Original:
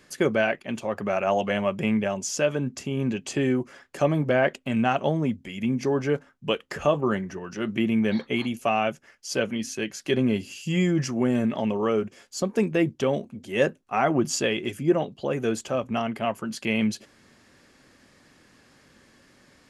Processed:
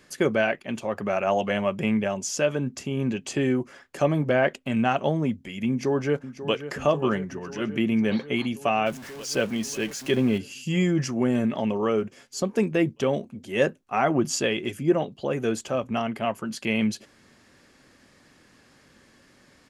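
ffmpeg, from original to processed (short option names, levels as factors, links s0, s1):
-filter_complex "[0:a]asplit=2[s0][s1];[s1]afade=t=in:st=5.69:d=0.01,afade=t=out:st=6.68:d=0.01,aecho=0:1:540|1080|1620|2160|2700|3240|3780|4320|4860|5400|5940|6480:0.251189|0.188391|0.141294|0.10597|0.0794777|0.0596082|0.0447062|0.0335296|0.0251472|0.0188604|0.0141453|0.010609[s2];[s0][s2]amix=inputs=2:normalize=0,asettb=1/sr,asplit=3[s3][s4][s5];[s3]atrim=end=8.864[s6];[s4]atrim=start=8.86:end=10.38,asetpts=PTS-STARTPTS,afade=t=in:d=0.004:c=qsin,afade=t=out:st=1.516:d=0.004:c=qsin,aeval=exprs='val(0)+0.5*0.0141*sgn(val(0))':c=same[s7];[s5]atrim=start=10.376[s8];[s6][s7]acrossfade=d=0.004:c1=hsin:c2=qsin[s9];[s9][s8]acrossfade=d=0.004:c1=qsin:c2=hsin"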